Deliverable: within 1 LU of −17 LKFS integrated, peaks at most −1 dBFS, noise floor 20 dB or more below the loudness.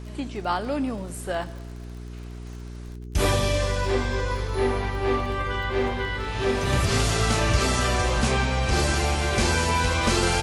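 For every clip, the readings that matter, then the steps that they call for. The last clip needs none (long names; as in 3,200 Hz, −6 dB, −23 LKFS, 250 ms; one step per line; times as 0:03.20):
crackle rate 37 per second; mains hum 60 Hz; hum harmonics up to 420 Hz; level of the hum −35 dBFS; integrated loudness −24.5 LKFS; sample peak −8.5 dBFS; target loudness −17.0 LKFS
→ click removal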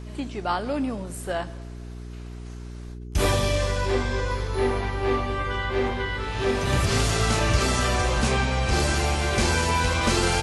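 crackle rate 0 per second; mains hum 60 Hz; hum harmonics up to 420 Hz; level of the hum −35 dBFS
→ hum removal 60 Hz, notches 7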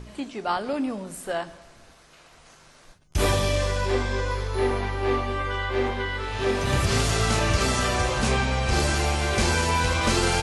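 mains hum none found; integrated loudness −24.5 LKFS; sample peak −9.0 dBFS; target loudness −17.0 LKFS
→ level +7.5 dB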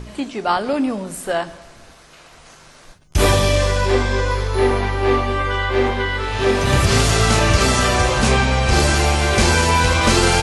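integrated loudness −17.0 LKFS; sample peak −1.5 dBFS; background noise floor −46 dBFS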